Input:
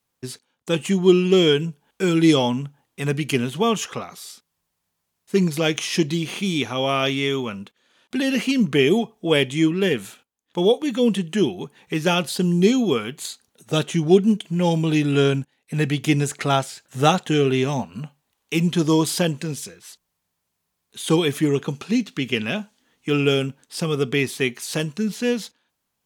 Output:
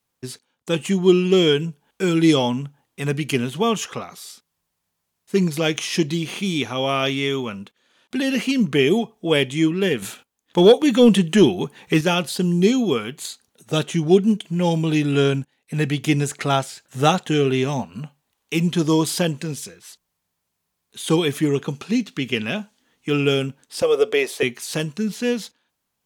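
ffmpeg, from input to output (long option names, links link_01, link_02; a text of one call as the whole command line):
ffmpeg -i in.wav -filter_complex "[0:a]asettb=1/sr,asplit=3[link_01][link_02][link_03];[link_01]atrim=end=10.024[link_04];[link_02]atrim=start=10.02:end=12.01,asetpts=PTS-STARTPTS,afade=type=in:duration=0.004:curve=qsin,afade=type=out:start_time=1.986:duration=0.004:curve=qsin,acontrast=83[link_05];[link_03]atrim=start=12.006[link_06];[link_04][link_05]acrossfade=duration=0.004:curve1=hsin:curve2=qsin[link_07];[link_07][link_06]acrossfade=duration=0.004:curve1=qsin:curve2=hsin,asettb=1/sr,asplit=3[link_08][link_09][link_10];[link_08]atrim=end=23.824[link_11];[link_09]atrim=start=23.82:end=24.43,asetpts=PTS-STARTPTS,afade=type=in:duration=0.004:curve=qsin,afade=type=out:start_time=0.606:duration=0.004:curve=qsin,highpass=frequency=520:width_type=q:width=4.8[link_12];[link_10]atrim=start=24.426[link_13];[link_11][link_12]acrossfade=duration=0.004:curve1=hsin:curve2=qsin[link_14];[link_14][link_13]acrossfade=duration=0.004:curve1=qsin:curve2=hsin" out.wav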